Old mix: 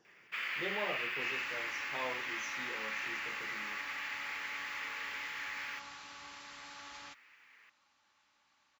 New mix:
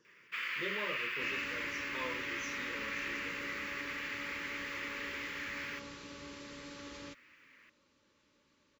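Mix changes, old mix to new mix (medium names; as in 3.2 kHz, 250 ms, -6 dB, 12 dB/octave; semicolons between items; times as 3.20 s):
second sound: add resonant low shelf 770 Hz +12.5 dB, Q 1.5; master: add Butterworth band-stop 740 Hz, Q 2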